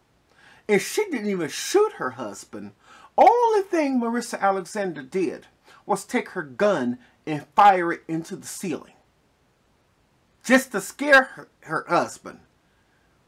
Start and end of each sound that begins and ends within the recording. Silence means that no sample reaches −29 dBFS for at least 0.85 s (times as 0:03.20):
0:10.46–0:12.30